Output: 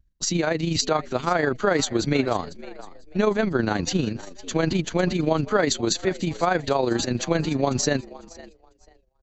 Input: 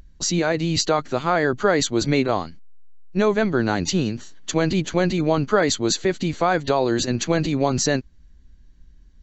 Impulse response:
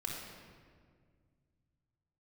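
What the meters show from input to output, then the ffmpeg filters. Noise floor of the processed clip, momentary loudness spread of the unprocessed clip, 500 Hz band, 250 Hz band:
-63 dBFS, 5 LU, -2.5 dB, -2.5 dB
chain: -filter_complex "[0:a]asplit=4[a][b][c][d];[b]adelay=499,afreqshift=83,volume=-19dB[e];[c]adelay=998,afreqshift=166,volume=-26.7dB[f];[d]adelay=1497,afreqshift=249,volume=-34.5dB[g];[a][e][f][g]amix=inputs=4:normalize=0,agate=range=-33dB:threshold=-35dB:ratio=3:detection=peak,tremolo=f=25:d=0.519"

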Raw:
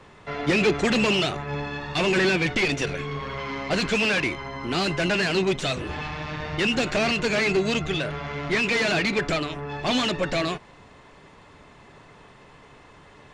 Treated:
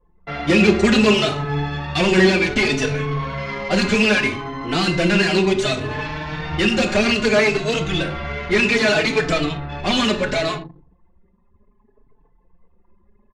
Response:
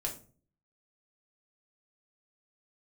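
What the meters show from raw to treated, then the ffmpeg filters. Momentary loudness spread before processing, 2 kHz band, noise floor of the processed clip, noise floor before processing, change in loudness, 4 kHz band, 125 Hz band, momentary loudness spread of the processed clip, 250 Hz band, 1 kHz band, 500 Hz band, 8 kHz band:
10 LU, +5.0 dB, -59 dBFS, -51 dBFS, +5.5 dB, +4.5 dB, +6.5 dB, 11 LU, +7.0 dB, +4.5 dB, +6.0 dB, +5.0 dB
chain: -filter_complex "[0:a]asplit=2[a][b];[1:a]atrim=start_sample=2205,asetrate=26019,aresample=44100[c];[b][c]afir=irnorm=-1:irlink=0,volume=-5.5dB[d];[a][d]amix=inputs=2:normalize=0,anlmdn=10,asplit=2[e][f];[f]adelay=4.1,afreqshift=0.65[g];[e][g]amix=inputs=2:normalize=1,volume=3dB"

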